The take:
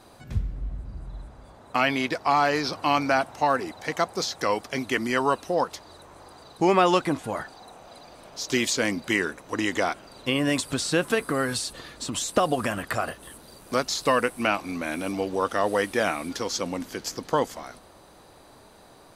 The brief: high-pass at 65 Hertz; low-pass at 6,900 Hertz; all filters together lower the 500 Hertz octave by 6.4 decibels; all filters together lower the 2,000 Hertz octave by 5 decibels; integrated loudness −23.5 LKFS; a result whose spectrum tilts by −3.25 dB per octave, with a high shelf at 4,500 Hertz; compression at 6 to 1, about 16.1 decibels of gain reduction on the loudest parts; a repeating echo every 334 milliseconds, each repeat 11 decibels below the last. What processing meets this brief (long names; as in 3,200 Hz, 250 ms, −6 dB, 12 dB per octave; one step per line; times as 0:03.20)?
high-pass filter 65 Hz
low-pass filter 6,900 Hz
parametric band 500 Hz −8 dB
parametric band 2,000 Hz −7.5 dB
high-shelf EQ 4,500 Hz +8 dB
downward compressor 6 to 1, threshold −38 dBFS
repeating echo 334 ms, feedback 28%, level −11 dB
level +18 dB